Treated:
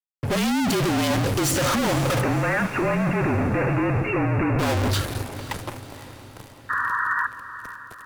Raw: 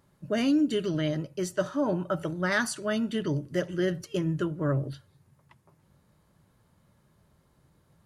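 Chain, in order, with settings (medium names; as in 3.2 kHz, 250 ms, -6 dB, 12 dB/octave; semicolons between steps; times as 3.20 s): fade-in on the opening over 0.80 s; high-pass 140 Hz 12 dB/octave; gate with hold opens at -57 dBFS; transient shaper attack +1 dB, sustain +7 dB; fuzz box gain 58 dB, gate -59 dBFS; frequency shift -40 Hz; 2.21–4.59 s: brick-wall FIR low-pass 2.8 kHz; 6.69–7.27 s: painted sound noise 940–1900 Hz -16 dBFS; echo that smears into a reverb 517 ms, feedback 53%, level -13.5 dB; trim -8 dB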